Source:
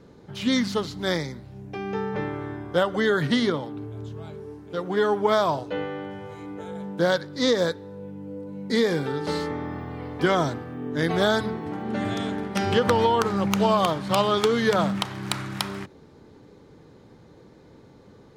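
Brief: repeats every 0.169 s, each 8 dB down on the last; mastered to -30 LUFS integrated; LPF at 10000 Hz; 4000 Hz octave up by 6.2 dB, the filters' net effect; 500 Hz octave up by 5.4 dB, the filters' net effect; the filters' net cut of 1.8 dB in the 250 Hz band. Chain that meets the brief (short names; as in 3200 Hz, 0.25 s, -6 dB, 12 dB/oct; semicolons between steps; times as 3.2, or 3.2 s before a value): LPF 10000 Hz; bell 250 Hz -4.5 dB; bell 500 Hz +7.5 dB; bell 4000 Hz +7.5 dB; feedback echo 0.169 s, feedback 40%, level -8 dB; gain -9.5 dB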